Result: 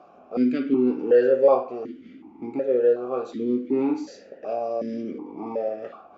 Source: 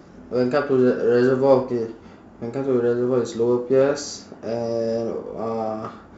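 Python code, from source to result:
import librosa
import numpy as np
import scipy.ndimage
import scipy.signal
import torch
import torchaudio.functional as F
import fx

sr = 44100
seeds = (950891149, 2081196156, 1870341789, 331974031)

y = fx.vowel_held(x, sr, hz=2.7)
y = y * 10.0 ** (8.5 / 20.0)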